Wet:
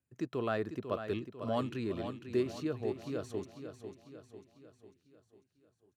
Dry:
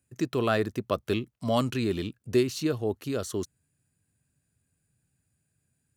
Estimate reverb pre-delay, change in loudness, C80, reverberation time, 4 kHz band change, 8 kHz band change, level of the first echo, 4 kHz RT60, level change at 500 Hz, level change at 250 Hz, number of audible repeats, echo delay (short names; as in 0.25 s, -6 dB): none, -8.0 dB, none, none, -12.5 dB, -16.5 dB, -9.0 dB, none, -7.0 dB, -7.5 dB, 5, 0.497 s